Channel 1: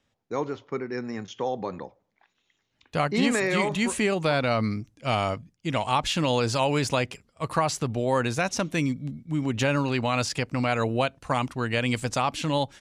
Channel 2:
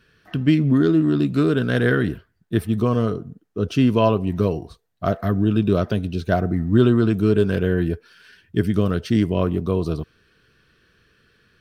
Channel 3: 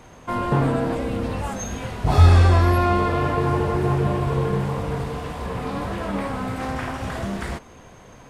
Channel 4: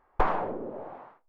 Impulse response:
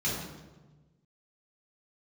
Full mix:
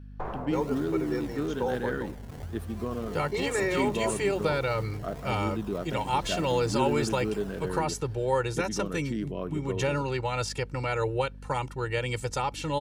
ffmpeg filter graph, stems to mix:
-filter_complex "[0:a]aecho=1:1:2.2:1,adelay=200,volume=-5.5dB[link_01];[1:a]highpass=190,volume=-12dB[link_02];[2:a]acompressor=threshold=-23dB:ratio=6,acrusher=samples=25:mix=1:aa=0.000001:lfo=1:lforange=25:lforate=1.1,adelay=250,volume=-15.5dB[link_03];[3:a]agate=range=-33dB:threshold=-59dB:ratio=3:detection=peak,volume=-11.5dB,asplit=2[link_04][link_05];[link_05]volume=-9dB[link_06];[4:a]atrim=start_sample=2205[link_07];[link_06][link_07]afir=irnorm=-1:irlink=0[link_08];[link_01][link_02][link_03][link_04][link_08]amix=inputs=5:normalize=0,equalizer=frequency=3200:width_type=o:width=1.9:gain=-3,aeval=exprs='val(0)+0.00708*(sin(2*PI*50*n/s)+sin(2*PI*2*50*n/s)/2+sin(2*PI*3*50*n/s)/3+sin(2*PI*4*50*n/s)/4+sin(2*PI*5*50*n/s)/5)':channel_layout=same"

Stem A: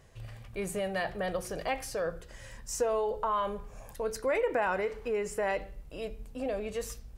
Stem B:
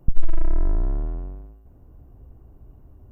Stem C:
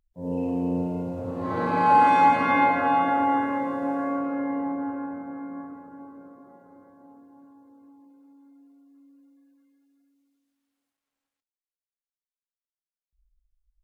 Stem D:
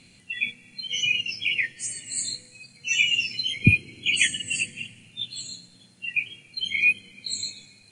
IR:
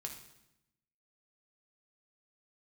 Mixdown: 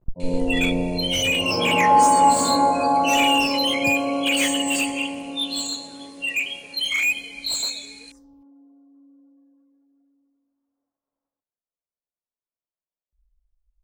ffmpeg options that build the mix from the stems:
-filter_complex "[0:a]acompressor=threshold=-38dB:ratio=6,asplit=2[link_01][link_02];[link_02]afreqshift=-1.5[link_03];[link_01][link_03]amix=inputs=2:normalize=1,adelay=1250,volume=-12.5dB[link_04];[1:a]aeval=exprs='max(val(0),0)':channel_layout=same,volume=-9dB[link_05];[2:a]lowpass=frequency=1100:width=0.5412,lowpass=frequency=1100:width=1.3066,equalizer=frequency=630:width_type=o:width=0.93:gain=4.5,bandreject=frequency=790:width=12,volume=2dB[link_06];[3:a]highshelf=frequency=2100:gain=7,asplit=2[link_07][link_08];[link_08]highpass=frequency=720:poles=1,volume=26dB,asoftclip=type=tanh:threshold=-1.5dB[link_09];[link_07][link_09]amix=inputs=2:normalize=0,lowpass=frequency=6500:poles=1,volume=-6dB,adelay=200,volume=-15dB,asplit=2[link_10][link_11];[link_11]volume=-8.5dB[link_12];[4:a]atrim=start_sample=2205[link_13];[link_12][link_13]afir=irnorm=-1:irlink=0[link_14];[link_04][link_05][link_06][link_10][link_14]amix=inputs=5:normalize=0"

